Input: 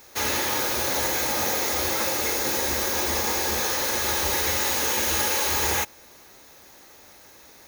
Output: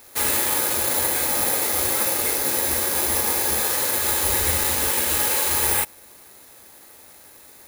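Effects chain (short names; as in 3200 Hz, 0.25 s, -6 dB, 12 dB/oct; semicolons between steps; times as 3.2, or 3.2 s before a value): careless resampling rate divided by 4×, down filtered, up zero stuff; 4.3–4.9 low shelf 130 Hz +10.5 dB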